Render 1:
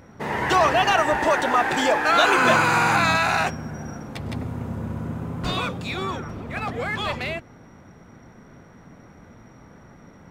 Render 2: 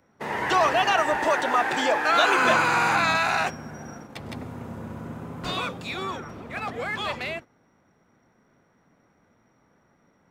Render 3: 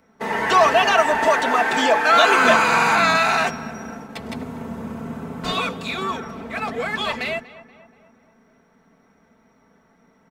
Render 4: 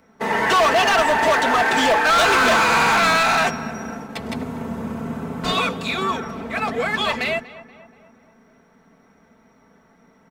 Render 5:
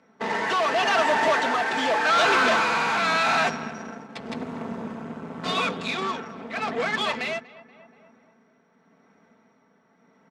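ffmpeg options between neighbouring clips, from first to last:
-filter_complex "[0:a]agate=range=0.282:threshold=0.0178:ratio=16:detection=peak,lowshelf=f=160:g=-10.5,acrossover=split=210|6900[s0][s1][s2];[s2]alimiter=level_in=3.76:limit=0.0631:level=0:latency=1:release=100,volume=0.266[s3];[s0][s1][s3]amix=inputs=3:normalize=0,volume=0.794"
-filter_complex "[0:a]bandreject=f=50:t=h:w=6,bandreject=f=100:t=h:w=6,bandreject=f=150:t=h:w=6,aecho=1:1:4.5:0.58,asplit=2[s0][s1];[s1]adelay=239,lowpass=f=2500:p=1,volume=0.141,asplit=2[s2][s3];[s3]adelay=239,lowpass=f=2500:p=1,volume=0.54,asplit=2[s4][s5];[s5]adelay=239,lowpass=f=2500:p=1,volume=0.54,asplit=2[s6][s7];[s7]adelay=239,lowpass=f=2500:p=1,volume=0.54,asplit=2[s8][s9];[s9]adelay=239,lowpass=f=2500:p=1,volume=0.54[s10];[s0][s2][s4][s6][s8][s10]amix=inputs=6:normalize=0,volume=1.58"
-af "volume=6.31,asoftclip=hard,volume=0.158,volume=1.41"
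-af "aeval=exprs='0.224*(cos(1*acos(clip(val(0)/0.224,-1,1)))-cos(1*PI/2))+0.0282*(cos(6*acos(clip(val(0)/0.224,-1,1)))-cos(6*PI/2))':c=same,tremolo=f=0.87:d=0.37,highpass=150,lowpass=5800,volume=0.668"

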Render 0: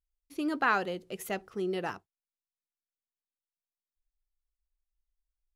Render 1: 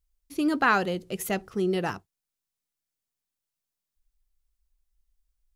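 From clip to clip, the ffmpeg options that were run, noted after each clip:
-af "bass=f=250:g=7,treble=f=4000:g=4,volume=1.68"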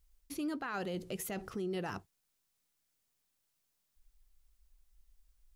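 -af "areverse,acompressor=threshold=0.0251:ratio=6,areverse,alimiter=level_in=4.22:limit=0.0631:level=0:latency=1:release=126,volume=0.237,volume=2.11"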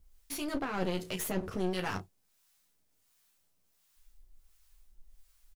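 -filter_complex "[0:a]aecho=1:1:11|33:0.631|0.335,acrossover=split=760[s0][s1];[s0]aeval=exprs='val(0)*(1-0.7/2+0.7/2*cos(2*PI*1.4*n/s))':c=same[s2];[s1]aeval=exprs='val(0)*(1-0.7/2-0.7/2*cos(2*PI*1.4*n/s))':c=same[s3];[s2][s3]amix=inputs=2:normalize=0,aeval=exprs='clip(val(0),-1,0.00376)':c=same,volume=2.82"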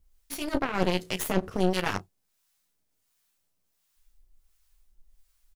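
-af "aeval=exprs='0.133*(cos(1*acos(clip(val(0)/0.133,-1,1)))-cos(1*PI/2))+0.0133*(cos(7*acos(clip(val(0)/0.133,-1,1)))-cos(7*PI/2))':c=same,volume=2.51"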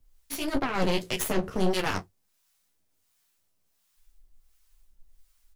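-filter_complex "[0:a]flanger=delay=7.7:depth=7.8:regen=-36:speed=1.7:shape=sinusoidal,acrossover=split=110|3000[s0][s1][s2];[s1]asoftclip=type=tanh:threshold=0.0531[s3];[s0][s3][s2]amix=inputs=3:normalize=0,volume=2"

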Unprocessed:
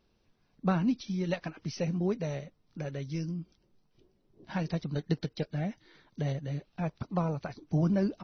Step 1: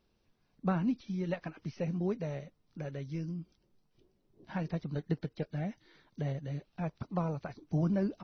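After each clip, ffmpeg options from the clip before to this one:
-filter_complex "[0:a]acrossover=split=2700[s0][s1];[s1]acompressor=threshold=0.00126:ratio=4:attack=1:release=60[s2];[s0][s2]amix=inputs=2:normalize=0,volume=0.708"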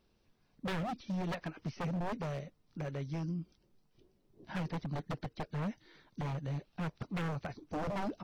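-af "aeval=exprs='0.0237*(abs(mod(val(0)/0.0237+3,4)-2)-1)':c=same,volume=1.19"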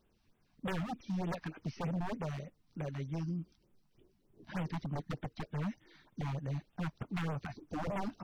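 -af "afftfilt=real='re*(1-between(b*sr/1024,410*pow(5300/410,0.5+0.5*sin(2*PI*3.3*pts/sr))/1.41,410*pow(5300/410,0.5+0.5*sin(2*PI*3.3*pts/sr))*1.41))':imag='im*(1-between(b*sr/1024,410*pow(5300/410,0.5+0.5*sin(2*PI*3.3*pts/sr))/1.41,410*pow(5300/410,0.5+0.5*sin(2*PI*3.3*pts/sr))*1.41))':win_size=1024:overlap=0.75"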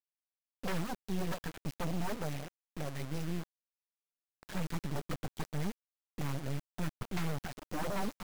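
-af "acrusher=bits=5:dc=4:mix=0:aa=0.000001,volume=1.68"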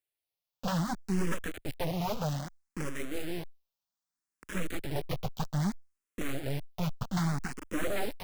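-filter_complex "[0:a]asplit=2[s0][s1];[s1]afreqshift=0.63[s2];[s0][s2]amix=inputs=2:normalize=1,volume=2.37"

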